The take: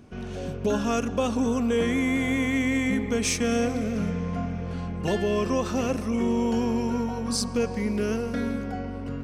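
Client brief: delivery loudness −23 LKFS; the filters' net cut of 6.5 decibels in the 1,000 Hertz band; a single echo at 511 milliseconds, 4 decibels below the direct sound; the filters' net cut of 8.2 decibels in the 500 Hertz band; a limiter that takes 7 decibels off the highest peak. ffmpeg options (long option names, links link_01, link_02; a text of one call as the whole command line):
ffmpeg -i in.wav -af "equalizer=frequency=500:width_type=o:gain=-8.5,equalizer=frequency=1000:width_type=o:gain=-5.5,alimiter=limit=-22.5dB:level=0:latency=1,aecho=1:1:511:0.631,volume=7dB" out.wav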